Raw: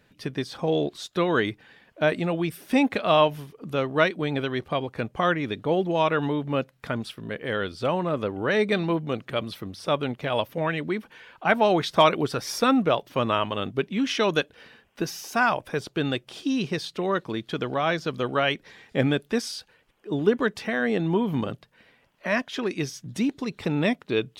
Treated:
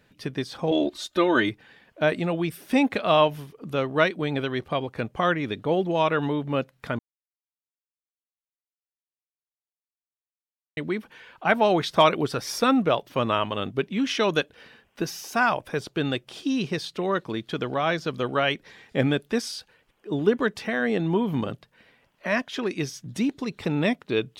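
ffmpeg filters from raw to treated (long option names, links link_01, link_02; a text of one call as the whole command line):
ffmpeg -i in.wav -filter_complex "[0:a]asettb=1/sr,asplit=3[link_01][link_02][link_03];[link_01]atrim=end=0.714[link_04];[link_02]atrim=start=0.71:end=1.49,asetpts=PTS-STARTPTS,afade=type=in:duration=0.004:curve=qsin,afade=type=out:start_time=0.776:duration=0.004:curve=qsin,aecho=1:1:3.3:0.82,atrim=end_sample=34398[link_05];[link_03]atrim=start=1.486[link_06];[link_04][link_05]acrossfade=duration=0.004:curve1=hsin:curve2=qsin[link_07];[link_07][link_06]acrossfade=duration=0.004:curve1=qsin:curve2=hsin,asplit=3[link_08][link_09][link_10];[link_08]atrim=end=6.99,asetpts=PTS-STARTPTS,afade=type=out:start_time=6.986:duration=0.004:curve=hsin[link_11];[link_09]atrim=start=6.99:end=10.77,asetpts=PTS-STARTPTS,volume=0[link_12];[link_10]atrim=start=10.77,asetpts=PTS-STARTPTS,afade=type=in:duration=0.004:curve=hsin[link_13];[link_11][link_12][link_13]concat=n=3:v=0:a=1" out.wav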